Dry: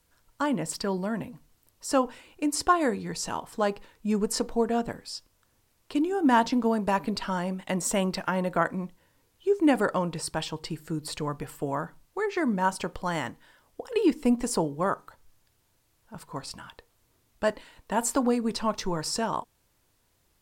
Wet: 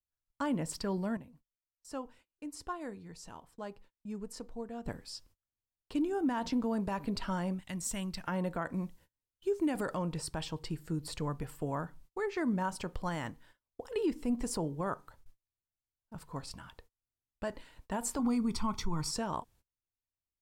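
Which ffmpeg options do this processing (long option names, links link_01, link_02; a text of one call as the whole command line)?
ffmpeg -i in.wav -filter_complex "[0:a]asettb=1/sr,asplit=3[link_01][link_02][link_03];[link_01]atrim=end=7.594[link_04];[link_02]atrim=start=7.59:end=8.24,asetpts=PTS-STARTPTS,afade=type=in:duration=0.004:curve=qsin,afade=type=out:start_time=0.646:duration=0.004:curve=qsin,equalizer=frequency=540:width_type=o:width=2.7:gain=-14[link_05];[link_03]atrim=start=8.236[link_06];[link_04][link_05]acrossfade=duration=0.004:curve1=hsin:curve2=qsin[link_07];[link_07][link_06]acrossfade=duration=0.004:curve1=qsin:curve2=hsin,asettb=1/sr,asplit=3[link_08][link_09][link_10];[link_08]atrim=end=8.744[link_11];[link_09]atrim=start=8.74:end=9.97,asetpts=PTS-STARTPTS,afade=type=in:duration=0.004:curve=qsin,afade=type=out:start_time=1.226:duration=0.004:curve=qsin,highshelf=frequency=3500:gain=6[link_12];[link_10]atrim=start=9.966[link_13];[link_11][link_12]acrossfade=duration=0.004:curve1=hsin:curve2=qsin[link_14];[link_14][link_13]acrossfade=duration=0.004:curve1=qsin:curve2=hsin,asettb=1/sr,asplit=3[link_15][link_16][link_17];[link_15]atrim=end=18.194[link_18];[link_16]atrim=start=18.19:end=19.11,asetpts=PTS-STARTPTS,afade=type=in:duration=0.004:curve=qsin,afade=type=out:start_time=0.916:duration=0.004:curve=qsin,aecho=1:1:0.9:0.82,atrim=end_sample=40572[link_19];[link_17]atrim=start=19.106[link_20];[link_18][link_19]acrossfade=duration=0.004:curve1=hsin:curve2=qsin[link_21];[link_21][link_20]acrossfade=duration=0.004:curve1=qsin:curve2=hsin,asplit=3[link_22][link_23][link_24];[link_22]atrim=end=1.172[link_25];[link_23]atrim=start=1.168:end=4.862,asetpts=PTS-STARTPTS,volume=-11dB[link_26];[link_24]atrim=start=4.858[link_27];[link_25][link_26]acrossfade=duration=0.004:curve1=hsin:curve2=hsin[link_28];[link_28][link_27]acrossfade=duration=0.004:curve1=hsin:curve2=hsin,agate=range=-29dB:threshold=-55dB:ratio=16:detection=peak,lowshelf=frequency=150:gain=10.5,alimiter=limit=-17dB:level=0:latency=1:release=76,volume=-7dB" out.wav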